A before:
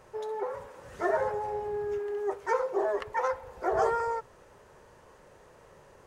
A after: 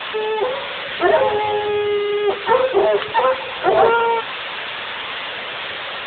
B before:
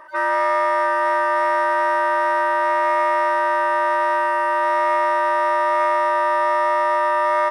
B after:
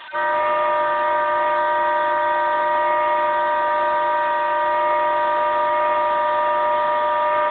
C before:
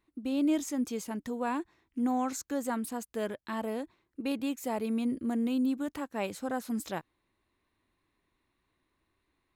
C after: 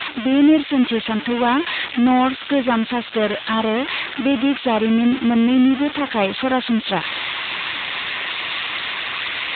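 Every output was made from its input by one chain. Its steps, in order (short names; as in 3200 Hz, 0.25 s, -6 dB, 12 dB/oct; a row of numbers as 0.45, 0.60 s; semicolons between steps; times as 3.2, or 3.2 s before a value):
switching spikes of -16 dBFS; AMR-NB 10.2 kbps 8000 Hz; match loudness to -19 LUFS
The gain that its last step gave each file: +13.0, 0.0, +14.5 dB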